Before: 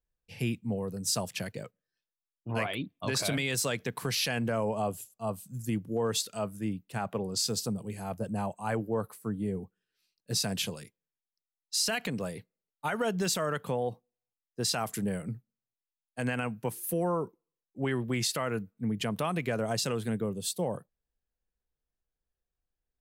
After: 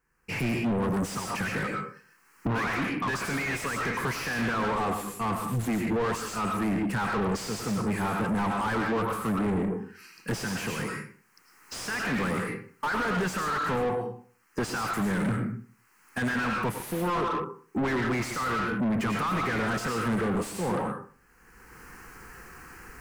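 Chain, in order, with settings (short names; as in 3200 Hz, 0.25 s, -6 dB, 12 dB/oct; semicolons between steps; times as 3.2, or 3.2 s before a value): recorder AGC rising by 27 dB/s; fixed phaser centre 1500 Hz, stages 4; on a send at -4 dB: reverb RT60 0.45 s, pre-delay 65 ms; on the sum: overdrive pedal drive 38 dB, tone 1200 Hz, clips at -15 dBFS; gain -3.5 dB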